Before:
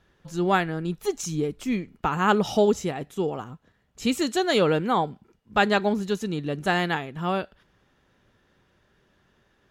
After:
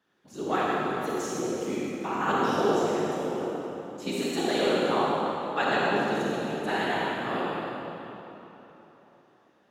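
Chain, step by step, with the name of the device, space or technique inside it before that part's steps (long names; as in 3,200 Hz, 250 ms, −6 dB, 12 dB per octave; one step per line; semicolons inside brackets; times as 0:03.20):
whispering ghost (random phases in short frames; high-pass filter 220 Hz 12 dB per octave; convolution reverb RT60 3.6 s, pre-delay 35 ms, DRR −6 dB)
level −9 dB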